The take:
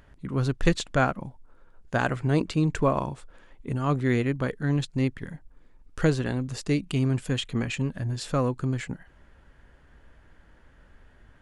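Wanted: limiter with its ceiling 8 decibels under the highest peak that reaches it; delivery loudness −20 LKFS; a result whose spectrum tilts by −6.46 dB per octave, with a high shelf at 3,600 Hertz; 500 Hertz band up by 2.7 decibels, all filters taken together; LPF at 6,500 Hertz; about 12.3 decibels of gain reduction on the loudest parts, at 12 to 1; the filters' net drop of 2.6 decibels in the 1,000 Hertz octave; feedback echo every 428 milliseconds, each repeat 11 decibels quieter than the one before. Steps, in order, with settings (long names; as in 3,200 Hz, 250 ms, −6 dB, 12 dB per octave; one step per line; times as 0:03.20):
low-pass filter 6,500 Hz
parametric band 500 Hz +4.5 dB
parametric band 1,000 Hz −4.5 dB
high-shelf EQ 3,600 Hz −7.5 dB
downward compressor 12 to 1, threshold −27 dBFS
brickwall limiter −26.5 dBFS
repeating echo 428 ms, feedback 28%, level −11 dB
level +17 dB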